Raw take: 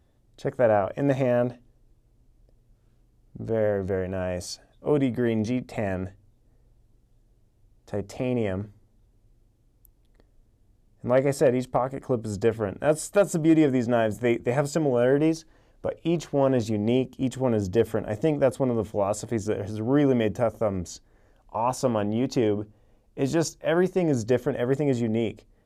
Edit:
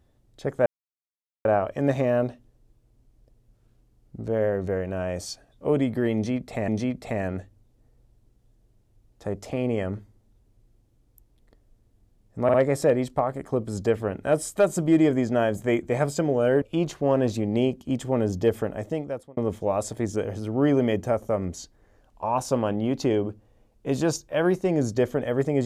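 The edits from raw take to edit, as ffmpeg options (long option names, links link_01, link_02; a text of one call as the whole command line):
ffmpeg -i in.wav -filter_complex "[0:a]asplit=7[link_01][link_02][link_03][link_04][link_05][link_06][link_07];[link_01]atrim=end=0.66,asetpts=PTS-STARTPTS,afade=type=out:start_time=0.656:duration=0.004:curve=hsin,apad=pad_dur=0.79[link_08];[link_02]atrim=start=0.66:end=5.892,asetpts=PTS-STARTPTS,afade=type=in:duration=0.004:curve=hsin[link_09];[link_03]atrim=start=5.348:end=11.162[link_10];[link_04]atrim=start=11.108:end=11.162[link_11];[link_05]atrim=start=11.108:end=15.192[link_12];[link_06]atrim=start=15.938:end=18.69,asetpts=PTS-STARTPTS,afade=type=out:start_time=1.972:duration=0.78[link_13];[link_07]atrim=start=18.69,asetpts=PTS-STARTPTS,afade=type=in:duration=0.004:curve=hsin[link_14];[link_08][link_09]concat=n=2:v=0:a=1[link_15];[link_15][link_10]acrossfade=duration=0.004:curve1=hsin:curve2=hsin[link_16];[link_16][link_11]acrossfade=duration=0.004:curve1=hsin:curve2=hsin[link_17];[link_17][link_12]acrossfade=duration=0.004:curve1=hsin:curve2=hsin[link_18];[link_13][link_14]concat=n=2:v=0:a=1[link_19];[link_18][link_19]acrossfade=duration=0.004:curve1=hsin:curve2=hsin" out.wav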